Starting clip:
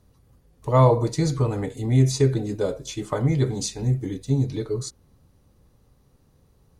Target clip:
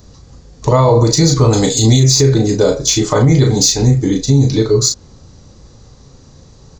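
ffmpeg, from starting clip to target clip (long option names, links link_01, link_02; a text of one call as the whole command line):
ffmpeg -i in.wav -filter_complex "[0:a]asettb=1/sr,asplit=3[link_01][link_02][link_03];[link_01]atrim=end=1.534[link_04];[link_02]atrim=start=1.53:end=2,asetpts=PTS-STARTPTS,afade=type=in:duration=0.004:curve=qsin,afade=type=out:start_time=0.466:duration=0.004:curve=qsin,highshelf=frequency=2800:width_type=q:width=1.5:gain=12.5[link_05];[link_03]atrim=start=1.996[link_06];[link_04][link_05]acrossfade=duration=0.004:curve1=hsin:curve2=qsin[link_07];[link_07][link_06]acrossfade=duration=0.004:curve1=qsin:curve2=hsin,asplit=2[link_08][link_09];[link_09]acompressor=threshold=-32dB:ratio=6,volume=-1.5dB[link_10];[link_08][link_10]amix=inputs=2:normalize=0,aresample=16000,aresample=44100,aexciter=amount=1.8:drive=8.7:freq=4000,asplit=2[link_11][link_12];[link_12]adelay=36,volume=-6dB[link_13];[link_11][link_13]amix=inputs=2:normalize=0,alimiter=level_in=12.5dB:limit=-1dB:release=50:level=0:latency=1,volume=-1dB" out.wav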